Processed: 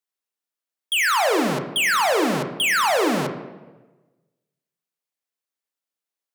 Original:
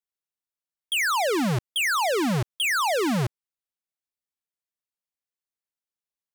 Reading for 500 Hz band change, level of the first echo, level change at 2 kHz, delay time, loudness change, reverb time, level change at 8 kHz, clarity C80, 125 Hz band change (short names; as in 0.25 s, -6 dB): +4.5 dB, none, +4.5 dB, none, +4.0 dB, 1.2 s, +3.5 dB, 13.0 dB, -5.5 dB